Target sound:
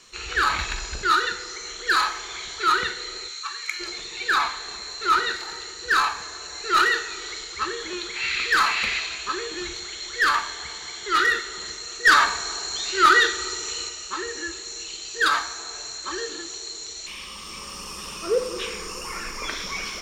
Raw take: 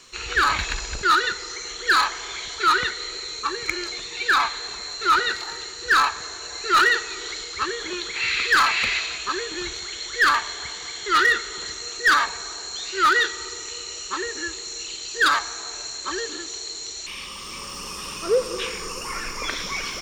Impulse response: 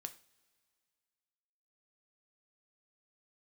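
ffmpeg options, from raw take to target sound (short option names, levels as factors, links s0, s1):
-filter_complex "[0:a]asplit=3[s0][s1][s2];[s0]afade=t=out:st=3.27:d=0.02[s3];[s1]highpass=1400,afade=t=in:st=3.27:d=0.02,afade=t=out:st=3.79:d=0.02[s4];[s2]afade=t=in:st=3.79:d=0.02[s5];[s3][s4][s5]amix=inputs=3:normalize=0,asettb=1/sr,asplit=3[s6][s7][s8];[s6]atrim=end=12.054[s9];[s7]atrim=start=12.05:end=13.89,asetpts=PTS-STARTPTS,afade=t=in:d=0.004:c=qsin,afade=t=out:st=1.836:d=0.004:c=qsin,acontrast=32[s10];[s8]atrim=start=13.886[s11];[s9][s10]acrossfade=d=0.004:c1=hsin:c2=qsin[s12];[s12][s11]acrossfade=d=0.004:c1=qsin:c2=hsin[s13];[1:a]atrim=start_sample=2205,asetrate=30870,aresample=44100[s14];[s13][s14]afir=irnorm=-1:irlink=0"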